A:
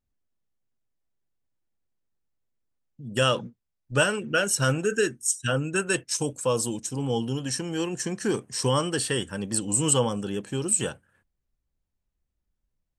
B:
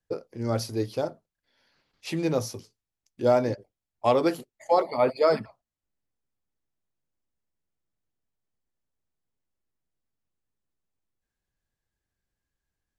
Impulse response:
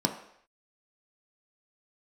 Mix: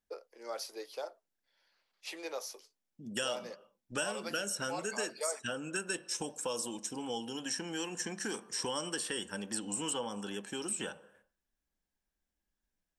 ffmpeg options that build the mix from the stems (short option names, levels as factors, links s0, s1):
-filter_complex "[0:a]volume=0.708,asplit=2[s0][s1];[s1]volume=0.15[s2];[1:a]highpass=f=430:w=0.5412,highpass=f=430:w=1.3066,volume=0.531[s3];[2:a]atrim=start_sample=2205[s4];[s2][s4]afir=irnorm=-1:irlink=0[s5];[s0][s3][s5]amix=inputs=3:normalize=0,lowshelf=f=450:g=-6.5,acrossover=split=690|3600[s6][s7][s8];[s6]acompressor=threshold=0.00891:ratio=4[s9];[s7]acompressor=threshold=0.01:ratio=4[s10];[s8]acompressor=threshold=0.0126:ratio=4[s11];[s9][s10][s11]amix=inputs=3:normalize=0"